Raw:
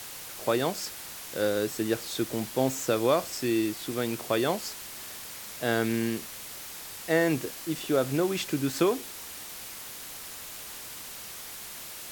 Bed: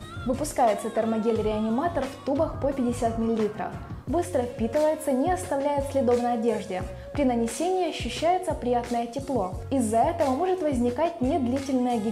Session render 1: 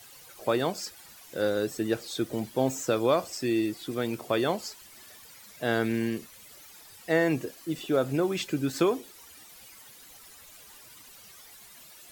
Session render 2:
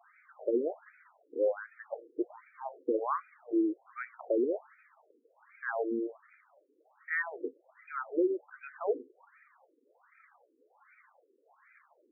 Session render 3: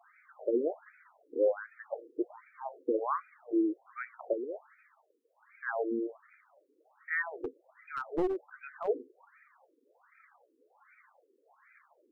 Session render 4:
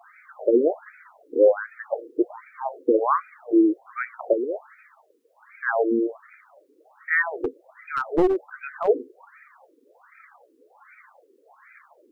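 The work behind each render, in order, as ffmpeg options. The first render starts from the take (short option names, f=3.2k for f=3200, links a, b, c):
-af "afftdn=nr=13:nf=-42"
-af "afftfilt=real='re*between(b*sr/1024,350*pow(1800/350,0.5+0.5*sin(2*PI*1.3*pts/sr))/1.41,350*pow(1800/350,0.5+0.5*sin(2*PI*1.3*pts/sr))*1.41)':imag='im*between(b*sr/1024,350*pow(1800/350,0.5+0.5*sin(2*PI*1.3*pts/sr))/1.41,350*pow(1800/350,0.5+0.5*sin(2*PI*1.3*pts/sr))*1.41)':win_size=1024:overlap=0.75"
-filter_complex "[0:a]asplit=3[a][b][c];[a]afade=t=out:st=0.63:d=0.02[d];[b]lowshelf=f=330:g=5.5,afade=t=in:st=0.63:d=0.02,afade=t=out:st=2.13:d=0.02[e];[c]afade=t=in:st=2.13:d=0.02[f];[d][e][f]amix=inputs=3:normalize=0,asettb=1/sr,asplit=3[g][h][i];[g]atrim=end=4.334[j];[h]atrim=start=4.33:end=5.67,asetpts=PTS-STARTPTS,afade=t=in:d=0.004:c=qsin,afade=t=out:st=1.336:d=0.004:c=qsin,highpass=f=1k:p=1[k];[i]atrim=start=5.666[l];[j][k]acrossfade=d=0.004:c1=hsin:c2=qsin[m];[m][l]acrossfade=d=0.004:c1=qsin:c2=hsin,asettb=1/sr,asplit=3[n][o][p];[n]atrim=end=7.354[q];[o]atrim=start=7.35:end=8.88,asetpts=PTS-STARTPTS,afade=t=in:d=0.004:c=qsin,afade=t=out:st=1.526:d=0.004:c=qsin,aeval=exprs='clip(val(0),-1,0.0299)':c=same[r];[p]atrim=start=8.876[s];[q][r]acrossfade=d=0.004:c1=hsin:c2=qsin[t];[t][s]acrossfade=d=0.004:c1=qsin:c2=hsin"
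-af "volume=11dB"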